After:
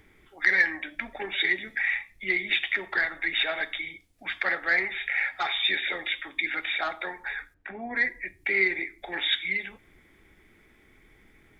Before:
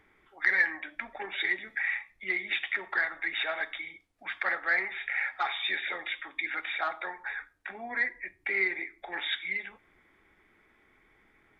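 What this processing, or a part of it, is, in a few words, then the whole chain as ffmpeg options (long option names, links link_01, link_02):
smiley-face EQ: -filter_complex "[0:a]asettb=1/sr,asplit=3[link_01][link_02][link_03];[link_01]atrim=end=7.544[link_04];[link_02]atrim=start=7.54:end=7.96,asetpts=PTS-STARTPTS,afade=type=in:duration=0.004:curve=qsin,afade=type=out:start_time=0.416:duration=0.004:curve=qsin,lowpass=1800[link_05];[link_03]atrim=start=7.956[link_06];[link_04][link_05]acrossfade=duration=0.004:curve1=hsin:curve2=qsin[link_07];[link_07][link_06]acrossfade=duration=0.004:curve1=qsin:curve2=hsin,lowshelf=frequency=190:gain=6,equalizer=frequency=1100:width_type=o:width=1.6:gain=-7.5,highshelf=frequency=5000:gain=6.5,volume=6.5dB"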